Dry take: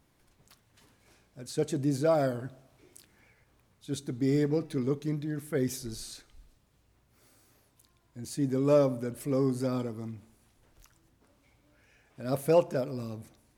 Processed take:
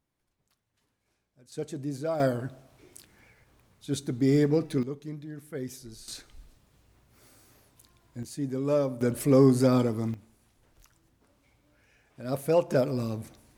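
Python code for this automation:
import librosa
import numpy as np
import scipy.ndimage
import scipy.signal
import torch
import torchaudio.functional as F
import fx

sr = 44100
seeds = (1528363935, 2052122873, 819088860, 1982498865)

y = fx.gain(x, sr, db=fx.steps((0.0, -14.0), (1.52, -5.5), (2.2, 4.0), (4.83, -6.5), (6.08, 5.0), (8.23, -2.5), (9.01, 8.5), (10.14, -0.5), (12.7, 6.5)))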